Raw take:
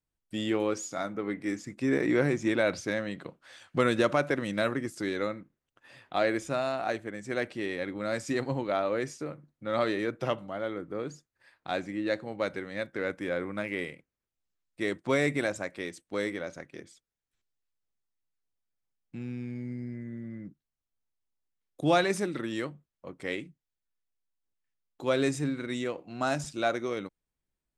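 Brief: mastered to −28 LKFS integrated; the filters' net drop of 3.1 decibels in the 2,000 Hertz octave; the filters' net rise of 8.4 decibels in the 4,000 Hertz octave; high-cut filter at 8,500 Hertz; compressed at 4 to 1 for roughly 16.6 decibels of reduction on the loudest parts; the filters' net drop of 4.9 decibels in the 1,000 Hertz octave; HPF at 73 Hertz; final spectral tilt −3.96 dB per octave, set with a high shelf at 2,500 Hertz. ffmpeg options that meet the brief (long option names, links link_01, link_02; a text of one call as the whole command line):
ffmpeg -i in.wav -af "highpass=73,lowpass=8500,equalizer=frequency=1000:width_type=o:gain=-8,equalizer=frequency=2000:width_type=o:gain=-6,highshelf=frequency=2500:gain=8,equalizer=frequency=4000:width_type=o:gain=5.5,acompressor=threshold=-41dB:ratio=4,volume=15.5dB" out.wav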